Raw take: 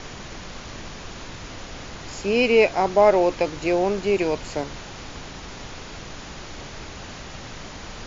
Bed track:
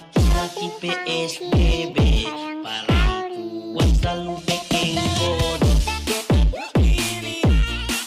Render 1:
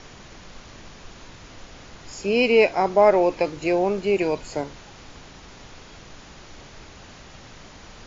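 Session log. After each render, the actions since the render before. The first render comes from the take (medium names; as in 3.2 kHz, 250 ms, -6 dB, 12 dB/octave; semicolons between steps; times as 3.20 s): noise print and reduce 7 dB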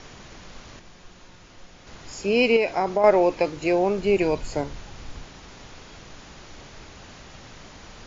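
0.79–1.87 s: feedback comb 180 Hz, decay 0.18 s; 2.56–3.04 s: compression, threshold -17 dBFS; 3.99–5.25 s: bass shelf 100 Hz +11 dB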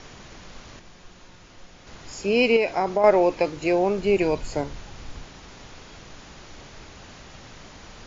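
no audible change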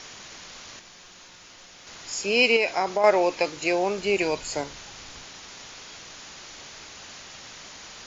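tilt EQ +3 dB/octave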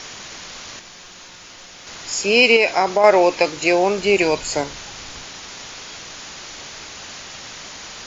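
trim +7.5 dB; peak limiter -2 dBFS, peak gain reduction 2 dB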